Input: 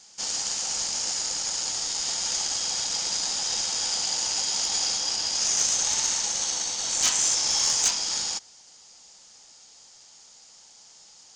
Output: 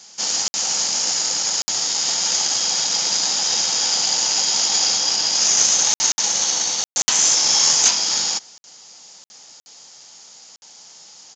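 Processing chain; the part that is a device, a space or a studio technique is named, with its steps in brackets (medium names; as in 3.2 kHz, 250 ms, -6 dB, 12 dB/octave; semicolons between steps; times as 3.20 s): call with lost packets (high-pass 120 Hz 24 dB/octave; resampled via 16 kHz; lost packets of 60 ms); trim +8 dB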